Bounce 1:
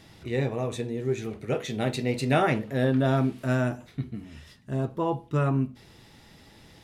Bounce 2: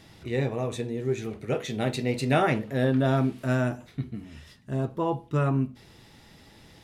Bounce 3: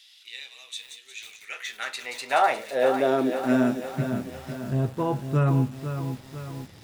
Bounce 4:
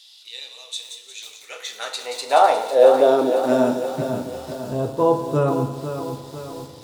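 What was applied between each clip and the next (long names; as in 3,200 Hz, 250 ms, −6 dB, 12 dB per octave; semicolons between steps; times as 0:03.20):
no processing that can be heard
delay with a high-pass on its return 178 ms, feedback 56%, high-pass 4,100 Hz, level −5 dB; high-pass filter sweep 3,300 Hz → 93 Hz, 0:01.04–0:04.52; feedback echo at a low word length 500 ms, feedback 55%, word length 7 bits, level −8.5 dB
graphic EQ with 10 bands 500 Hz +11 dB, 1,000 Hz +7 dB, 2,000 Hz −7 dB, 4,000 Hz +8 dB, 8,000 Hz +5 dB, 16,000 Hz +5 dB; feedback delay network reverb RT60 1.1 s, low-frequency decay 0.9×, high-frequency decay 0.85×, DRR 6 dB; level −2 dB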